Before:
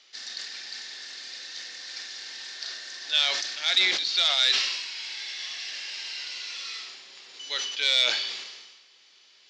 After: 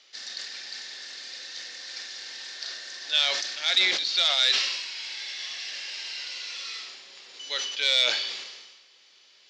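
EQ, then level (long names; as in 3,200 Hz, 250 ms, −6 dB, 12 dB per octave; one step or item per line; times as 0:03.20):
parametric band 540 Hz +4 dB 0.37 octaves
0.0 dB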